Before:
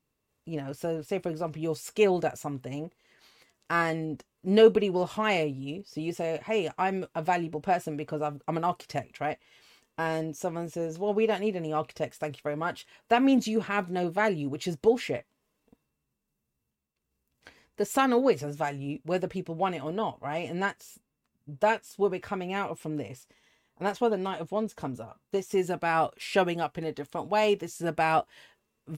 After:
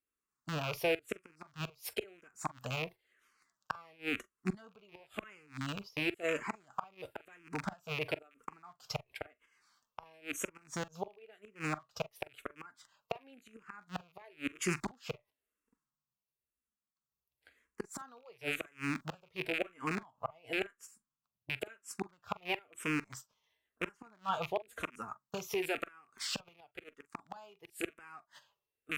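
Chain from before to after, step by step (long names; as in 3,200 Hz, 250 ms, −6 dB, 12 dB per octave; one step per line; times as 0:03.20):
loose part that buzzes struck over −39 dBFS, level −26 dBFS
noise gate −45 dBFS, range −15 dB
0:24.15–0:26.48: downward compressor 2.5 to 1, threshold −31 dBFS, peak gain reduction 8.5 dB
parametric band 1,300 Hz +12 dB 1 octave
gate with flip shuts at −19 dBFS, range −31 dB
high-shelf EQ 3,900 Hz +9.5 dB
convolution reverb, pre-delay 42 ms, DRR 18 dB
frequency shifter mixed with the dry sound −0.97 Hz
level −1.5 dB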